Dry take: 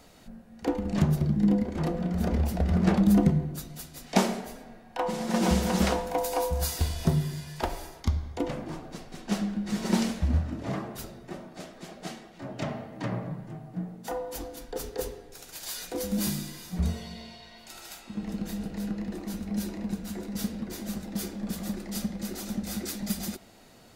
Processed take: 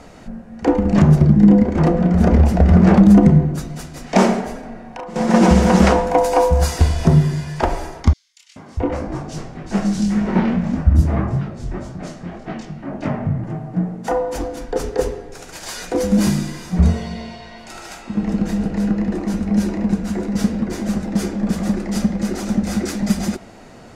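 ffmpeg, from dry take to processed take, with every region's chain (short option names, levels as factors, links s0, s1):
-filter_complex "[0:a]asettb=1/sr,asplit=3[s0][s1][s2];[s0]atrim=end=4.594[s3];[s1]atrim=start=4.59:end=5.16,asetpts=PTS-STARTPTS,afade=t=in:d=0.004:c=qsin,afade=t=out:st=0.566:d=0.004:c=qsin,acompressor=threshold=0.00794:ratio=6:attack=3.2:release=140:knee=1:detection=peak,asplit=2[s4][s5];[s5]adelay=39,volume=0.501[s6];[s4][s6]amix=inputs=2:normalize=0,atrim=end_sample=25137[s7];[s2]atrim=start=5.156[s8];[s3][s7]acrossfade=d=0.004:c1=hsin:c2=qsin[s9];[s9][s8]acrossfade=d=0.004:c1=qsin:c2=hsin,asettb=1/sr,asplit=3[s10][s11][s12];[s10]atrim=end=8.134[s13];[s11]atrim=start=8.13:end=13.44,asetpts=PTS-STARTPTS,afade=t=in:d=0.004:c=qsin,afade=t=out:st=5.306:d=0.004:c=qsin,flanger=delay=19:depth=6.4:speed=1.8,asubboost=boost=3:cutoff=240,acrossover=split=180|3300[s14][s15][s16];[s15]adelay=430[s17];[s14]adelay=640[s18];[s18][s17][s16]amix=inputs=3:normalize=0,atrim=end_sample=234171[s19];[s12]atrim=start=13.436[s20];[s13][s19]acrossfade=d=0.004:c1=hsin:c2=qsin[s21];[s21][s20]acrossfade=d=0.004:c1=qsin:c2=hsin,lowpass=6000,equalizer=f=3800:w=1.3:g=-9,alimiter=level_in=5.62:limit=0.891:release=50:level=0:latency=1,volume=0.891"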